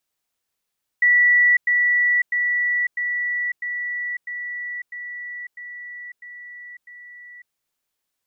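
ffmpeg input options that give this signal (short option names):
-f lavfi -i "aevalsrc='pow(10,(-12-3*floor(t/0.65))/20)*sin(2*PI*1950*t)*clip(min(mod(t,0.65),0.55-mod(t,0.65))/0.005,0,1)':d=6.5:s=44100"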